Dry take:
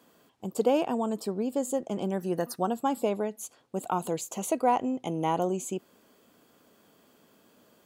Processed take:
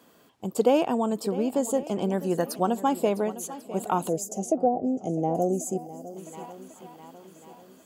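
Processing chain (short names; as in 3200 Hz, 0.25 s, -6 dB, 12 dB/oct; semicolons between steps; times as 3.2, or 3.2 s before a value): swung echo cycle 1.093 s, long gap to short 1.5:1, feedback 36%, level -15.5 dB; 4.26–5.35 treble ducked by the level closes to 600 Hz, closed at -19 dBFS; 4.09–6.17 spectral gain 800–4700 Hz -19 dB; gain +3.5 dB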